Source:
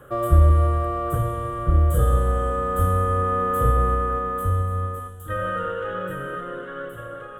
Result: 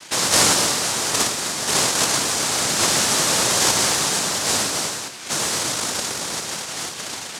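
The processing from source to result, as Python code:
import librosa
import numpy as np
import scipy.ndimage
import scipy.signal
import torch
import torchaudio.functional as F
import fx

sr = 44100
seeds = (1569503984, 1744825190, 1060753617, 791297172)

y = fx.noise_vocoder(x, sr, seeds[0], bands=1)
y = fx.dynamic_eq(y, sr, hz=2500.0, q=0.86, threshold_db=-39.0, ratio=4.0, max_db=-7)
y = F.gain(torch.from_numpy(y), 6.0).numpy()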